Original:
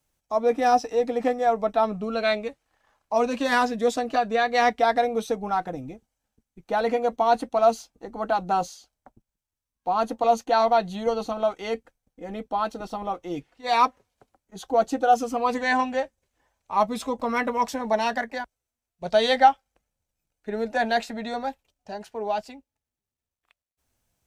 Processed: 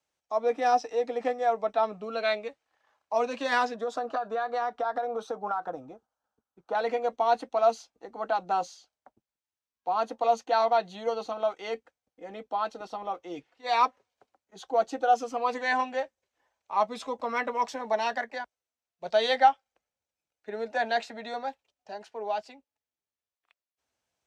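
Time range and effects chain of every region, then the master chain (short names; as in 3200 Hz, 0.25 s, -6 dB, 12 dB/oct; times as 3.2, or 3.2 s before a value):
3.74–6.75 EQ curve 330 Hz 0 dB, 780 Hz +5 dB, 1400 Hz +9 dB, 2100 Hz -11 dB, 3200 Hz -5 dB + compressor 12:1, threshold -21 dBFS
whole clip: HPF 63 Hz; three-band isolator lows -12 dB, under 330 Hz, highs -16 dB, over 7400 Hz; gain -3.5 dB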